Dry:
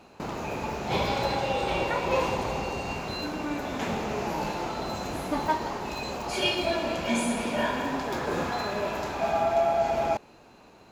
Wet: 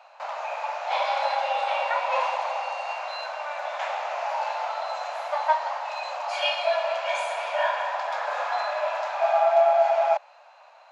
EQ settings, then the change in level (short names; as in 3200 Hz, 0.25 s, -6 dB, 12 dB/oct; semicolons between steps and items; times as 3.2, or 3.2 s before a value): steep high-pass 580 Hz 72 dB/oct; tape spacing loss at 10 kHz 26 dB; high shelf 5300 Hz +6 dB; +7.0 dB